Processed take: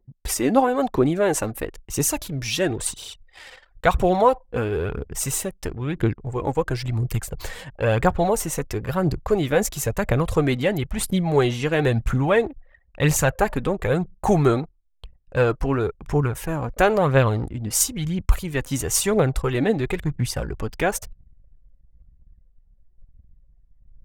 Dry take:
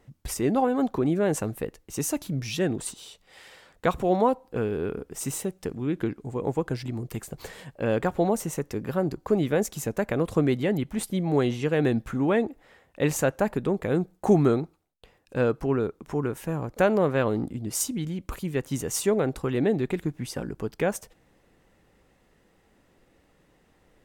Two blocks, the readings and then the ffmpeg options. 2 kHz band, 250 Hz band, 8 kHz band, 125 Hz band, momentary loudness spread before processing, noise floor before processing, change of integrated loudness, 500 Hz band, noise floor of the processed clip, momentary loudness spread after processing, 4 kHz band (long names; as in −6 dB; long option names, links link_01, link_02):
+7.5 dB, +1.5 dB, +8.0 dB, +6.5 dB, 10 LU, −64 dBFS, +4.5 dB, +3.5 dB, −57 dBFS, 9 LU, +8.0 dB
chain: -af "lowshelf=frequency=280:gain=-7.5,aphaser=in_gain=1:out_gain=1:delay=4.2:decay=0.43:speed=0.99:type=triangular,asubboost=boost=7:cutoff=96,anlmdn=0.00631,volume=7dB"